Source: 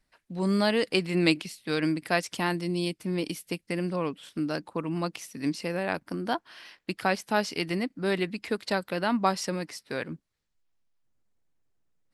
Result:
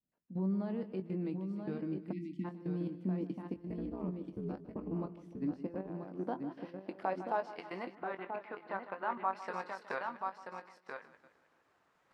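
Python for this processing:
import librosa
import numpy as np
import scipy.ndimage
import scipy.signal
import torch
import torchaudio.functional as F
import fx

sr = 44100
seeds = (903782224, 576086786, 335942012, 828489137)

y = fx.recorder_agc(x, sr, target_db=-16.0, rise_db_per_s=28.0, max_gain_db=30)
y = fx.echo_feedback(y, sr, ms=153, feedback_pct=50, wet_db=-11)
y = fx.level_steps(y, sr, step_db=13)
y = fx.doubler(y, sr, ms=21.0, db=-9.5)
y = fx.ring_mod(y, sr, carrier_hz=120.0, at=(3.56, 4.91))
y = fx.filter_sweep_bandpass(y, sr, from_hz=210.0, to_hz=1100.0, start_s=5.33, end_s=8.08, q=1.2)
y = fx.dynamic_eq(y, sr, hz=1000.0, q=1.3, threshold_db=-51.0, ratio=4.0, max_db=6)
y = y + 10.0 ** (-6.0 / 20.0) * np.pad(y, (int(983 * sr / 1000.0), 0))[:len(y)]
y = fx.spec_erase(y, sr, start_s=2.12, length_s=0.32, low_hz=380.0, high_hz=1900.0)
y = fx.air_absorb(y, sr, metres=380.0, at=(7.95, 9.35))
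y = F.gain(torch.from_numpy(y), -7.0).numpy()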